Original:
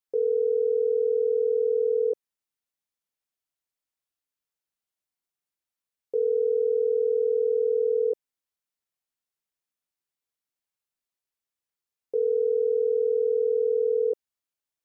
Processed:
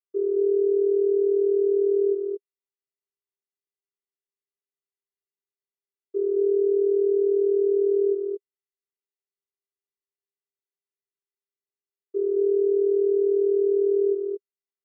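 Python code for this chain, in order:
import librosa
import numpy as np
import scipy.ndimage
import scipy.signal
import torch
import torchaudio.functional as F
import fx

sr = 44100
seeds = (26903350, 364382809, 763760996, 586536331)

p1 = fx.vocoder(x, sr, bands=16, carrier='square', carrier_hz=399.0)
p2 = p1 + fx.echo_single(p1, sr, ms=221, db=-4.0, dry=0)
y = p2 * 10.0 ** (1.5 / 20.0)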